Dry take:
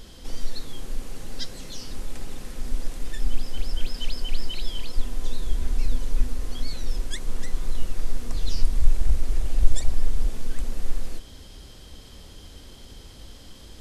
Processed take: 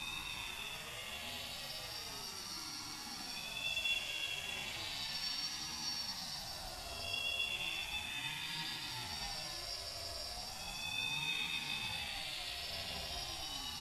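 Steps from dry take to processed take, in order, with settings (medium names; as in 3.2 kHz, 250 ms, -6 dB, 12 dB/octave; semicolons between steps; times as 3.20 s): high-pass 260 Hz 24 dB/octave; band-stop 3.7 kHz, Q 14; chord resonator F#2 major, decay 0.44 s; Paulstretch 15×, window 0.05 s, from 3.78 s; doubling 13 ms -3 dB; reverberation, pre-delay 3 ms, DRR 4 dB; ring modulator with a swept carrier 420 Hz, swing 30%, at 0.35 Hz; trim +10.5 dB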